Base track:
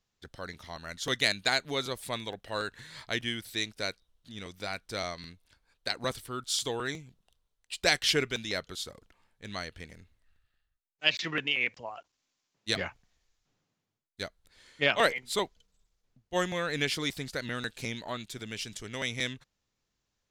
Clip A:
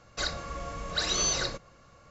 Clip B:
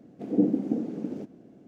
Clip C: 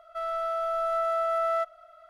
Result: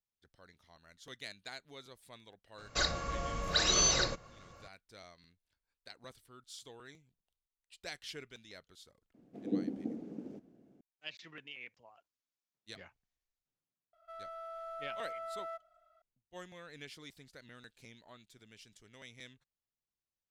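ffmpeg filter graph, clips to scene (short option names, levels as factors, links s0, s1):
-filter_complex "[0:a]volume=0.106[s0];[1:a]atrim=end=2.1,asetpts=PTS-STARTPTS,afade=t=in:d=0.004:c=hsin,afade=t=out:st=2.096:d=0.004:c=hsin,adelay=2580[s1];[2:a]atrim=end=1.67,asetpts=PTS-STARTPTS,volume=0.266,afade=t=in:d=0.004:c=hsin,afade=t=out:st=1.666:d=0.004:c=hsin,adelay=403074S[s2];[3:a]atrim=end=2.09,asetpts=PTS-STARTPTS,volume=0.158,afade=t=in:d=0.004:c=hsin,afade=t=out:st=2.086:d=0.004:c=hsin,adelay=13930[s3];[s0][s1][s2][s3]amix=inputs=4:normalize=0"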